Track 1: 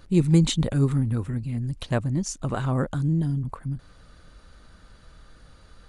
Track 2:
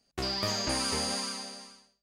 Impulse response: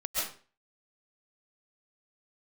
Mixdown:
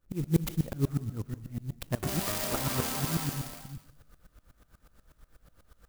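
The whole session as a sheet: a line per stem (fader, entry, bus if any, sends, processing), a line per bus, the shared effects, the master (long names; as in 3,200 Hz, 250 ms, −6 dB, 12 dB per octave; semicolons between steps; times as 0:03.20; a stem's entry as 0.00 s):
0.0 dB, 0.00 s, send −19 dB, de-essing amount 50%; tremolo with a ramp in dB swelling 8.2 Hz, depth 27 dB
+1.0 dB, 1.85 s, send −8 dB, downward compressor, threshold −31 dBFS, peak gain reduction 5.5 dB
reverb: on, RT60 0.40 s, pre-delay 95 ms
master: tuned comb filter 50 Hz, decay 1.4 s, harmonics all, mix 30%; converter with an unsteady clock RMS 0.063 ms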